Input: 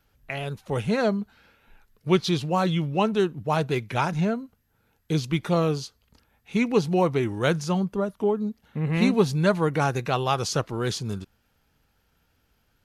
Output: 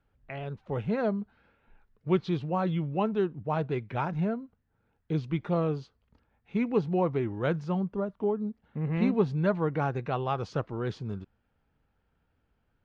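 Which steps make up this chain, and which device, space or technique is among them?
phone in a pocket (low-pass filter 3,400 Hz 12 dB per octave; high-shelf EQ 2,300 Hz −10.5 dB)
level −4.5 dB

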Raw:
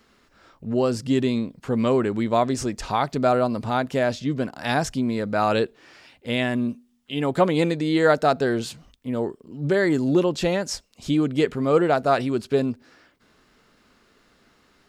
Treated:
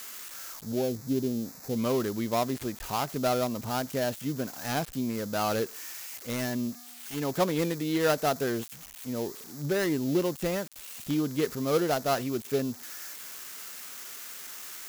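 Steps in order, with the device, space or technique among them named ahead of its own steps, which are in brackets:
0:00.72–0:01.75: elliptic low-pass filter 810 Hz
budget class-D amplifier (gap after every zero crossing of 0.15 ms; spike at every zero crossing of −18.5 dBFS)
level −7 dB

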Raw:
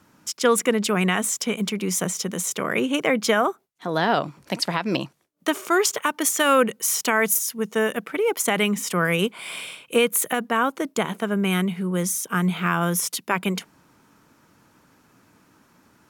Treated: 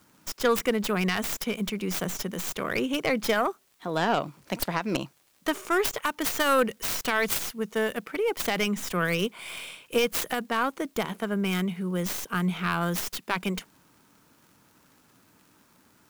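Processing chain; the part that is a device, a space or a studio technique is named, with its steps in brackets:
record under a worn stylus (stylus tracing distortion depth 0.28 ms; surface crackle; white noise bed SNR 38 dB)
level −4.5 dB

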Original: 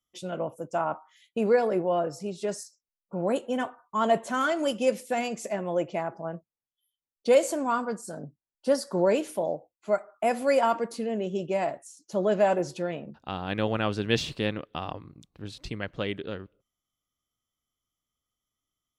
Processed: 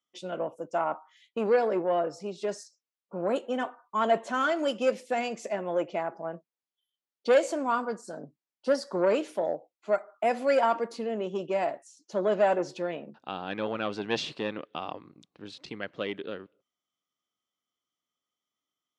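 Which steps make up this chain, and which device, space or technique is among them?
public-address speaker with an overloaded transformer (saturating transformer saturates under 720 Hz; band-pass filter 240–5,700 Hz)

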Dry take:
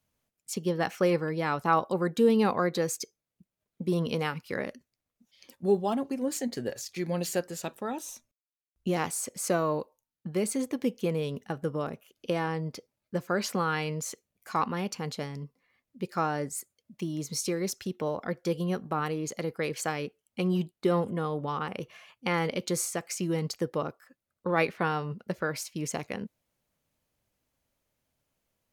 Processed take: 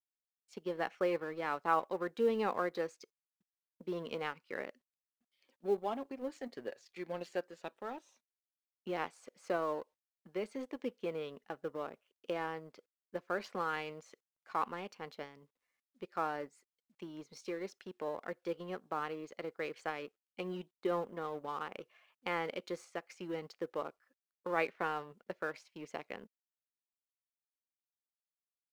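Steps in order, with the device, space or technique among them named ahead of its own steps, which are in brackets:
phone line with mismatched companding (band-pass filter 340–3,200 Hz; mu-law and A-law mismatch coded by A)
level −5.5 dB

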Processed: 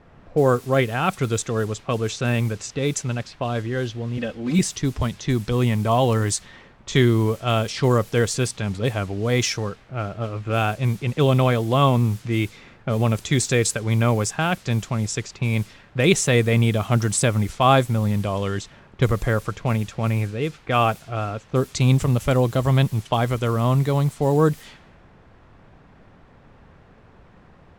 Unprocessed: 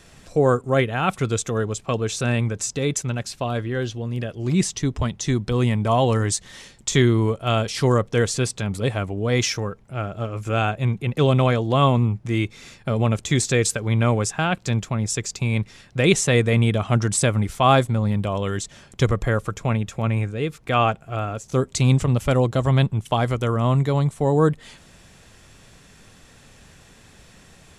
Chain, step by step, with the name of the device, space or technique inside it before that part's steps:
0:04.17–0:04.59: comb filter 3.9 ms, depth 89%
cassette deck with a dynamic noise filter (white noise bed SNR 24 dB; low-pass that shuts in the quiet parts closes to 1,000 Hz, open at −17.5 dBFS)

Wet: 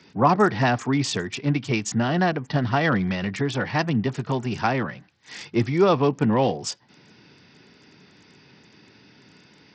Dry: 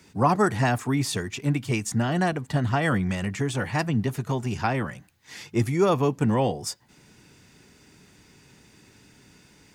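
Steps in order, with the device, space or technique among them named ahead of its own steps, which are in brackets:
Bluetooth headset (high-pass filter 130 Hz 12 dB per octave; downsampling to 16,000 Hz; level +3 dB; SBC 64 kbit/s 44,100 Hz)

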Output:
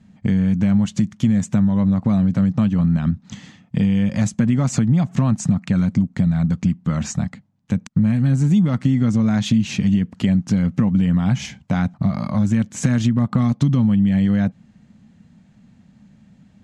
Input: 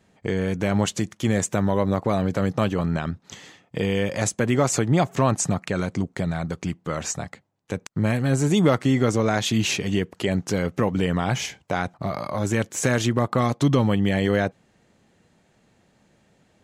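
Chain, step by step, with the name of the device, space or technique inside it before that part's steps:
jukebox (low-pass filter 7,800 Hz 12 dB per octave; low shelf with overshoot 290 Hz +9.5 dB, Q 3; downward compressor 5 to 1, threshold −14 dBFS, peak gain reduction 11.5 dB)

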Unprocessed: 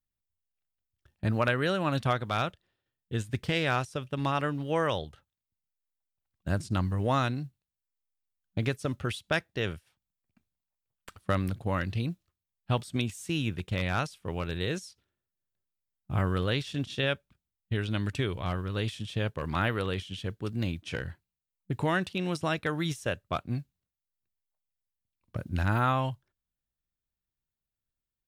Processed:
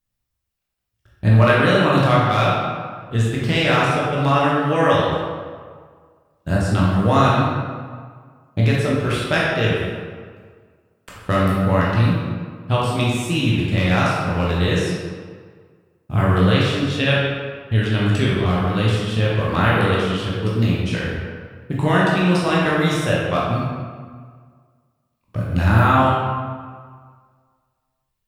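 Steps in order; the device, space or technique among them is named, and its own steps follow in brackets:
stairwell (convolution reverb RT60 1.8 s, pre-delay 13 ms, DRR −6 dB)
level +5.5 dB

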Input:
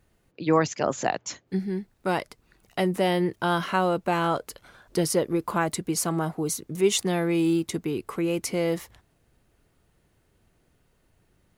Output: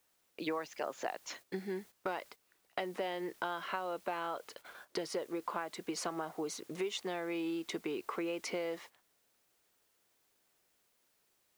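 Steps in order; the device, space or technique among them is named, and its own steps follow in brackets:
baby monitor (band-pass filter 430–4,100 Hz; downward compressor 10 to 1, threshold −35 dBFS, peak gain reduction 17.5 dB; white noise bed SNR 23 dB; noise gate −53 dBFS, range −12 dB)
level +1 dB

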